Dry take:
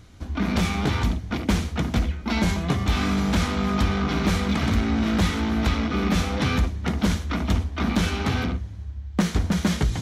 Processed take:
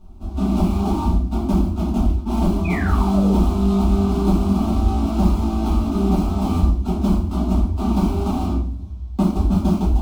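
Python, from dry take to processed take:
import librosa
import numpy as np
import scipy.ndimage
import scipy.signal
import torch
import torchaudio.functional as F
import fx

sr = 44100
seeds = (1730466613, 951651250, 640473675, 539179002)

y = scipy.signal.medfilt(x, 25)
y = fx.fixed_phaser(y, sr, hz=480.0, stages=6)
y = fx.spec_paint(y, sr, seeds[0], shape='fall', start_s=2.64, length_s=0.76, low_hz=310.0, high_hz=2600.0, level_db=-37.0)
y = fx.room_shoebox(y, sr, seeds[1], volume_m3=50.0, walls='mixed', distance_m=1.6)
y = y * 10.0 ** (-1.5 / 20.0)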